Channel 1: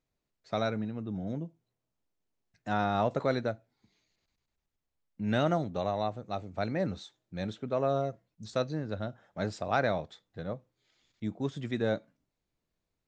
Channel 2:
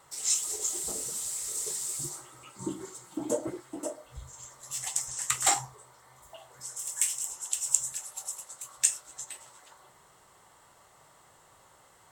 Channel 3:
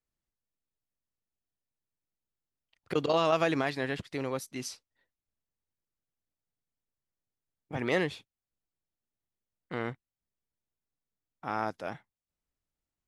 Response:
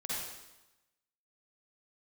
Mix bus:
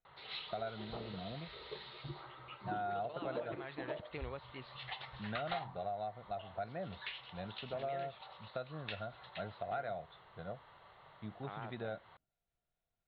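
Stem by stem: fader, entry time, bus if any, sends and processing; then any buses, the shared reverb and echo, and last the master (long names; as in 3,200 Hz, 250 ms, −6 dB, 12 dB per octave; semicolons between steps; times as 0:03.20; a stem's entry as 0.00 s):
−8.0 dB, 0.00 s, no send, parametric band 1,100 Hz −5 dB 1.6 octaves; hollow resonant body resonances 710/1,400 Hz, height 15 dB, ringing for 35 ms
+0.5 dB, 0.05 s, no send, gain into a clipping stage and back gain 21 dB
−3.5 dB, 0.00 s, no send, downward compressor 2 to 1, threshold −32 dBFS, peak gain reduction 6.5 dB; pitch vibrato 5.1 Hz 92 cents; automatic ducking −6 dB, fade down 1.05 s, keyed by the first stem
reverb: not used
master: Butterworth low-pass 4,100 Hz 96 dB per octave; parametric band 280 Hz −8 dB 0.67 octaves; downward compressor 3 to 1, threshold −39 dBFS, peak gain reduction 12 dB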